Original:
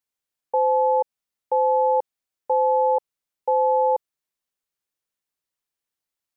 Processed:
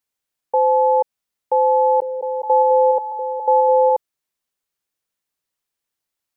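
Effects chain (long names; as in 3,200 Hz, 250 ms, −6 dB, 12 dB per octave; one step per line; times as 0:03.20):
0:01.81–0:03.90: echo through a band-pass that steps 207 ms, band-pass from 350 Hz, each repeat 0.7 octaves, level −3 dB
level +4 dB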